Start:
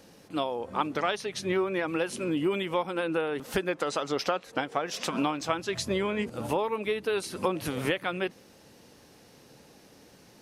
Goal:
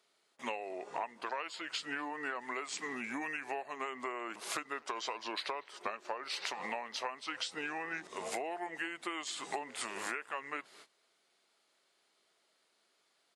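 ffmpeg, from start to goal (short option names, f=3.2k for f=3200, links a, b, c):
-filter_complex "[0:a]agate=range=-20dB:threshold=-49dB:ratio=16:detection=peak,highpass=900,acompressor=threshold=-41dB:ratio=6,asetrate=34398,aresample=44100,asplit=2[a][b];[b]adelay=240,highpass=300,lowpass=3.4k,asoftclip=type=hard:threshold=-36dB,volume=-24dB[c];[a][c]amix=inputs=2:normalize=0,volume=5dB"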